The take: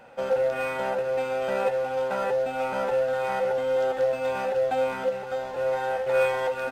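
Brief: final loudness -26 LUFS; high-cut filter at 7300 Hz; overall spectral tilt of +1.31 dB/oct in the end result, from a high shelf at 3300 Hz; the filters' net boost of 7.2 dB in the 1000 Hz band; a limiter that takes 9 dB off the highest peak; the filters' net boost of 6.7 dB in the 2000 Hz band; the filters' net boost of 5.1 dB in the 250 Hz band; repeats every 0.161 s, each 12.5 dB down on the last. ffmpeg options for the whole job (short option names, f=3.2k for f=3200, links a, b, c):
-af "lowpass=7.3k,equalizer=f=250:t=o:g=5.5,equalizer=f=1k:t=o:g=8.5,equalizer=f=2k:t=o:g=8,highshelf=f=3.3k:g=-7.5,alimiter=limit=-17.5dB:level=0:latency=1,aecho=1:1:161|322|483:0.237|0.0569|0.0137,volume=-1.5dB"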